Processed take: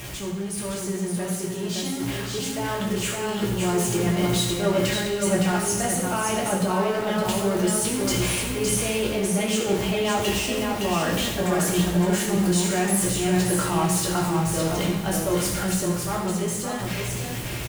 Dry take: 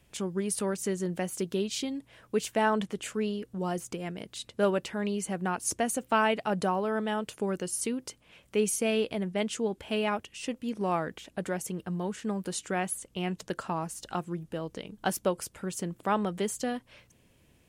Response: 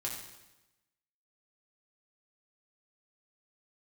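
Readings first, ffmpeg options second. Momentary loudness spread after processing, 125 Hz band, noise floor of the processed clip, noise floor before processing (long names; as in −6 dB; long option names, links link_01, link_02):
7 LU, +12.5 dB, −30 dBFS, −64 dBFS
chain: -filter_complex "[0:a]aeval=exprs='val(0)+0.5*0.0237*sgn(val(0))':channel_layout=same,areverse,acompressor=threshold=-33dB:ratio=6,areverse,aecho=1:1:564:0.596,dynaudnorm=framelen=440:gausssize=13:maxgain=6dB[link_01];[1:a]atrim=start_sample=2205[link_02];[link_01][link_02]afir=irnorm=-1:irlink=0,volume=3.5dB"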